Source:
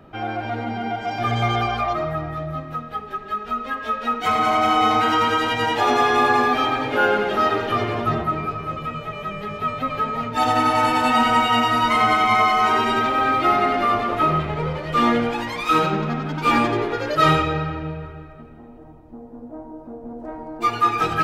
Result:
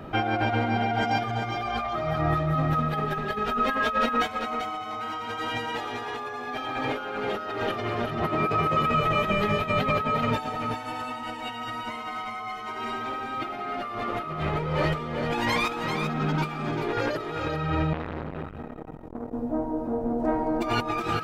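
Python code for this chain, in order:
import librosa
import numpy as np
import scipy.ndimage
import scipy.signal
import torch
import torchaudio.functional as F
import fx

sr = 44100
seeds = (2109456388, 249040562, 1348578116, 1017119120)

y = fx.low_shelf(x, sr, hz=110.0, db=-11.5, at=(8.22, 8.86))
y = fx.over_compress(y, sr, threshold_db=-30.0, ratio=-1.0)
y = y + 10.0 ** (-6.5 / 20.0) * np.pad(y, (int(391 * sr / 1000.0), 0))[:len(y)]
y = fx.transformer_sat(y, sr, knee_hz=1000.0, at=(17.93, 19.33))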